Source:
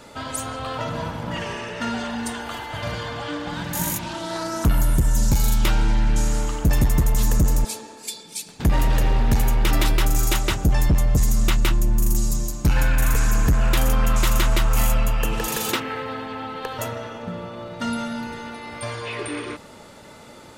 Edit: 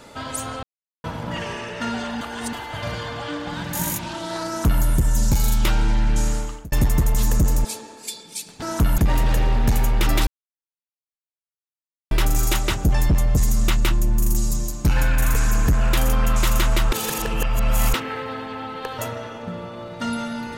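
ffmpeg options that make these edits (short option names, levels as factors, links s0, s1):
-filter_complex "[0:a]asplit=11[s0][s1][s2][s3][s4][s5][s6][s7][s8][s9][s10];[s0]atrim=end=0.63,asetpts=PTS-STARTPTS,afade=t=out:st=0.626:d=0.004:c=hsin[s11];[s1]atrim=start=0.63:end=1.04,asetpts=PTS-STARTPTS,volume=0[s12];[s2]atrim=start=1.04:end=2.212,asetpts=PTS-STARTPTS,afade=t=in:d=0.004:c=hsin[s13];[s3]atrim=start=2.208:end=2.532,asetpts=PTS-STARTPTS,areverse[s14];[s4]atrim=start=2.528:end=6.72,asetpts=PTS-STARTPTS,afade=t=out:st=3.762:d=0.43[s15];[s5]atrim=start=6.72:end=8.622,asetpts=PTS-STARTPTS,afade=t=in:d=0.004:c=hsin[s16];[s6]atrim=start=4.468:end=4.832[s17];[s7]atrim=start=8.618:end=9.91,asetpts=PTS-STARTPTS,afade=t=out:st=1.288:d=0.004:c=hsin,apad=pad_dur=1.84[s18];[s8]atrim=start=9.91:end=14.722,asetpts=PTS-STARTPTS,afade=t=in:d=0.004:c=hsin[s19];[s9]atrim=start=14.718:end=15.742,asetpts=PTS-STARTPTS,areverse[s20];[s10]atrim=start=15.738[s21];[s11][s12][s13]concat=n=3:v=0:a=1[s22];[s22][s14]acrossfade=d=0.004:c1=hsin:c2=hsin[s23];[s15][s16]concat=n=2:v=0:a=1[s24];[s23][s24]acrossfade=d=0.004:c1=hsin:c2=hsin[s25];[s25][s17]acrossfade=d=0.004:c1=hsin:c2=hsin[s26];[s18][s19]concat=n=2:v=0:a=1[s27];[s26][s27]acrossfade=d=0.004:c1=hsin:c2=hsin[s28];[s28][s20]acrossfade=d=0.004:c1=hsin:c2=hsin[s29];[s29][s21]acrossfade=d=0.004:c1=hsin:c2=hsin"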